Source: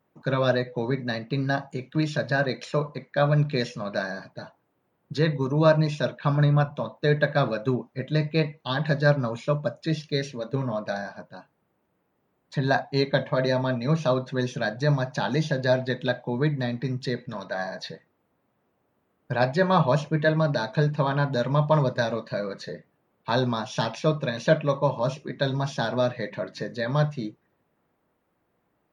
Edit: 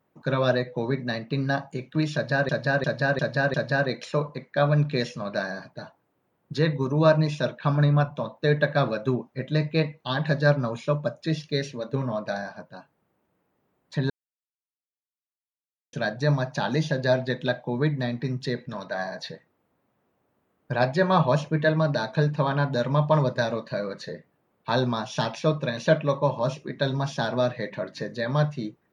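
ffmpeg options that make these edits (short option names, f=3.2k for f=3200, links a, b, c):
-filter_complex "[0:a]asplit=7[a][b][c][d][e][f][g];[a]atrim=end=2.492[h];[b]atrim=start=2.138:end=2.492[i];[c]atrim=start=2.138:end=2.492[j];[d]atrim=start=2.138:end=2.492[k];[e]atrim=start=2.138:end=12.7,asetpts=PTS-STARTPTS,afade=t=out:st=10.558:d=0.004:c=hsin[l];[f]atrim=start=12.7:end=14.53,asetpts=PTS-STARTPTS,volume=0[m];[g]atrim=start=14.53,asetpts=PTS-STARTPTS,afade=t=in:d=0.004:c=hsin[n];[h][i]acrossfade=d=0.004:c1=hsin:c2=hsin[o];[o][j]acrossfade=d=0.004:c1=hsin:c2=hsin[p];[p][k]acrossfade=d=0.004:c1=hsin:c2=hsin[q];[l][m][n]concat=n=3:v=0:a=1[r];[q][r]acrossfade=d=0.004:c1=hsin:c2=hsin"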